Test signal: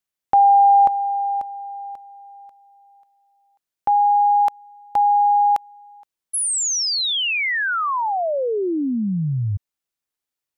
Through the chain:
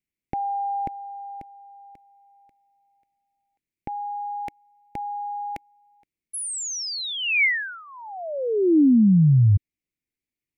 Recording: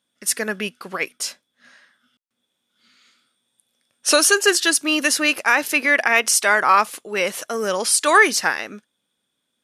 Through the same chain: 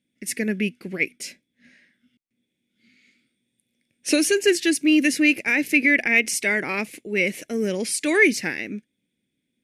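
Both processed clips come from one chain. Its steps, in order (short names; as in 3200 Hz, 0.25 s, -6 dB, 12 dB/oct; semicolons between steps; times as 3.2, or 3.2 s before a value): EQ curve 310 Hz 0 dB, 1200 Hz -30 dB, 2200 Hz -2 dB, 3200 Hz -15 dB; gain +6.5 dB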